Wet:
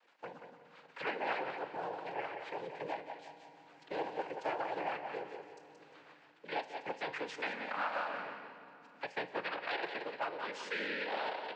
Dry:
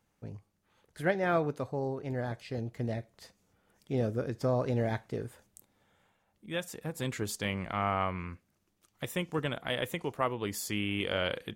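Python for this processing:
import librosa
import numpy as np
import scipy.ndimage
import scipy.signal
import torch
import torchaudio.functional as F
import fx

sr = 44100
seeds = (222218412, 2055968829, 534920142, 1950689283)

y = fx.law_mismatch(x, sr, coded='A')
y = y + 0.65 * np.pad(y, (int(5.9 * sr / 1000.0), 0))[:len(y)]
y = 10.0 ** (-22.0 / 20.0) * (np.abs((y / 10.0 ** (-22.0 / 20.0) + 3.0) % 4.0 - 2.0) - 1.0)
y = fx.rotary_switch(y, sr, hz=7.5, then_hz=0.9, switch_at_s=7.85)
y = fx.noise_vocoder(y, sr, seeds[0], bands=8)
y = fx.bandpass_edges(y, sr, low_hz=700.0, high_hz=2500.0)
y = fx.echo_feedback(y, sr, ms=176, feedback_pct=20, wet_db=-9.5)
y = fx.rev_fdn(y, sr, rt60_s=1.5, lf_ratio=1.45, hf_ratio=0.9, size_ms=99.0, drr_db=11.0)
y = fx.band_squash(y, sr, depth_pct=70)
y = y * librosa.db_to_amplitude(3.0)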